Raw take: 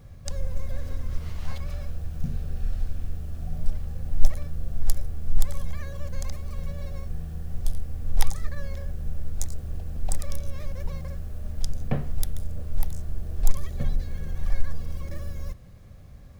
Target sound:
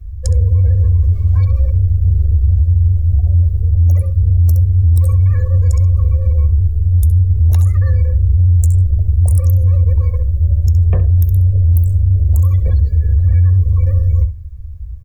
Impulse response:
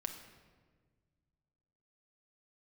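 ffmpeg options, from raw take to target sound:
-filter_complex "[0:a]acrossover=split=170|2900[s0][s1][s2];[s0]acompressor=threshold=0.0501:ratio=4[s3];[s3][s1][s2]amix=inputs=3:normalize=0,afreqshift=-88,asoftclip=type=tanh:threshold=0.0708,highshelf=f=8800:g=12,afftdn=nr=21:nf=-41,equalizer=f=69:t=o:w=1.8:g=10,aecho=1:1:2:0.47,aecho=1:1:73:0.188,asetrate=48069,aresample=44100,alimiter=level_in=5.01:limit=0.891:release=50:level=0:latency=1,volume=0.596"

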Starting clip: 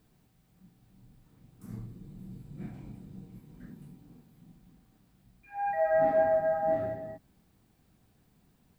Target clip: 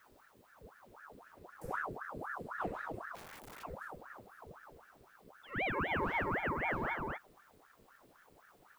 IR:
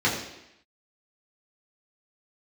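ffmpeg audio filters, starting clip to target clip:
-filter_complex "[0:a]asplit=3[s0][s1][s2];[s0]afade=t=out:st=3.14:d=0.02[s3];[s1]aeval=exprs='(mod(282*val(0)+1,2)-1)/282':c=same,afade=t=in:st=3.14:d=0.02,afade=t=out:st=3.62:d=0.02[s4];[s2]afade=t=in:st=3.62:d=0.02[s5];[s3][s4][s5]amix=inputs=3:normalize=0,acrossover=split=170|3000[s6][s7][s8];[s7]acompressor=threshold=0.0158:ratio=6[s9];[s6][s9][s8]amix=inputs=3:normalize=0,aeval=exprs='val(0)*sin(2*PI*910*n/s+910*0.75/3.9*sin(2*PI*3.9*n/s))':c=same,volume=1.78"

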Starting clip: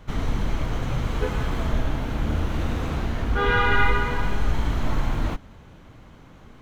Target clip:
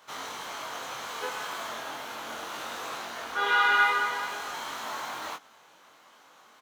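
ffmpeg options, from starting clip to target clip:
-filter_complex "[0:a]highpass=1100,equalizer=f=2200:w=0.99:g=-8,asplit=2[s0][s1];[s1]adelay=22,volume=0.708[s2];[s0][s2]amix=inputs=2:normalize=0,volume=1.58"

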